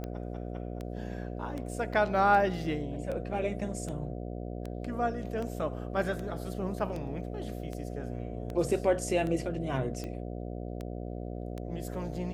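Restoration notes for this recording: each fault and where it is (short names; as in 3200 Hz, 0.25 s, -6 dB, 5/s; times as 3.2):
buzz 60 Hz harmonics 12 -38 dBFS
tick 78 rpm -25 dBFS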